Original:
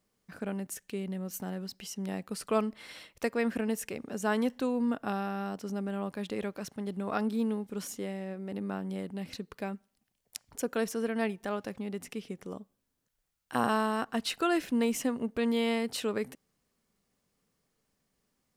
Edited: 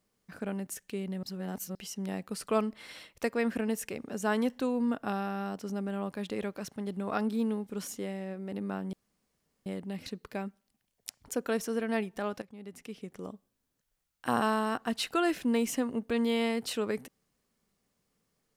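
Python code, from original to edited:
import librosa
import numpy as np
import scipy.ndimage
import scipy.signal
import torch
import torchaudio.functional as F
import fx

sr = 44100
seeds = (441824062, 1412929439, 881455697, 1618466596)

y = fx.edit(x, sr, fx.reverse_span(start_s=1.23, length_s=0.52),
    fx.insert_room_tone(at_s=8.93, length_s=0.73),
    fx.fade_in_from(start_s=11.69, length_s=0.89, floor_db=-15.0), tone=tone)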